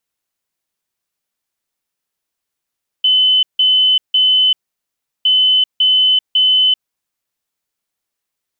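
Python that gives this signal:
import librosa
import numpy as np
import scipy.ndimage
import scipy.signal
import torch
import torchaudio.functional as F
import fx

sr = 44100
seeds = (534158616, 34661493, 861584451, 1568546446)

y = fx.beep_pattern(sr, wave='sine', hz=3030.0, on_s=0.39, off_s=0.16, beeps=3, pause_s=0.72, groups=2, level_db=-8.5)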